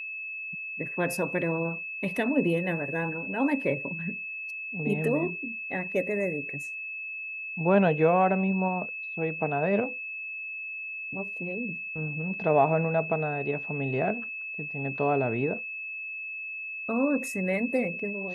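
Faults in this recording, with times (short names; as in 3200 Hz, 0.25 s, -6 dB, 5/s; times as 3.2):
tone 2600 Hz -34 dBFS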